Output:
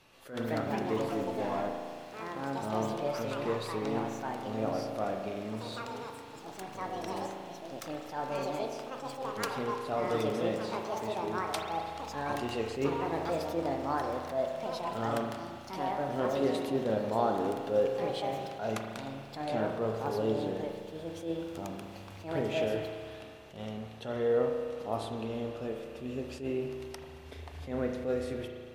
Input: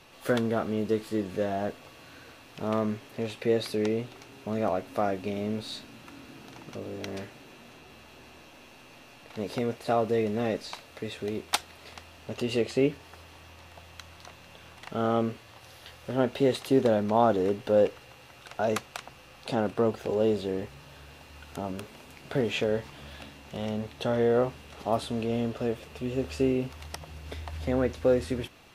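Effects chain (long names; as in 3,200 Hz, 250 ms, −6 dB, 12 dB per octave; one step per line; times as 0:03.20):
delay with pitch and tempo change per echo 274 ms, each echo +4 semitones, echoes 3
spring reverb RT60 2 s, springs 36 ms, chirp 50 ms, DRR 3 dB
level that may rise only so fast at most 140 dB per second
level −7.5 dB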